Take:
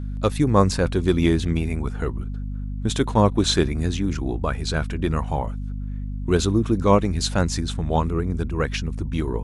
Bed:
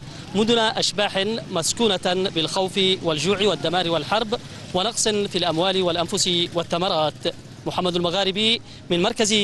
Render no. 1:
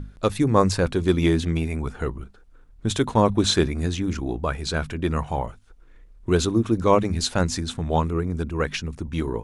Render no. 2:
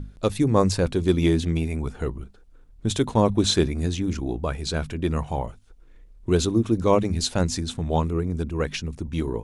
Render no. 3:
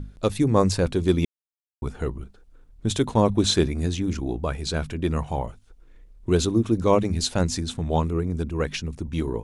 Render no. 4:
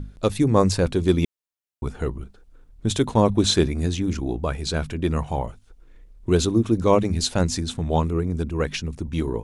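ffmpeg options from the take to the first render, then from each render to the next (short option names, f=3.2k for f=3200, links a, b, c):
-af "bandreject=f=50:t=h:w=6,bandreject=f=100:t=h:w=6,bandreject=f=150:t=h:w=6,bandreject=f=200:t=h:w=6,bandreject=f=250:t=h:w=6"
-af "equalizer=f=1.4k:w=1:g=-5.5"
-filter_complex "[0:a]asplit=3[a][b][c];[a]atrim=end=1.25,asetpts=PTS-STARTPTS,afade=t=out:st=1.246:d=0.004:c=hsin[d];[b]atrim=start=1.25:end=1.82,asetpts=PTS-STARTPTS,volume=0[e];[c]atrim=start=1.82,asetpts=PTS-STARTPTS,afade=t=in:d=0.004:c=hsin[f];[d][e][f]concat=n=3:v=0:a=1"
-af "volume=1.5dB"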